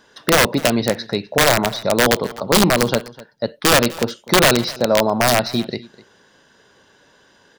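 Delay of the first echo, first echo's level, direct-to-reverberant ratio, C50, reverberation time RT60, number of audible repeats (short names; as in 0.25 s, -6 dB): 0.252 s, -20.5 dB, none, none, none, 1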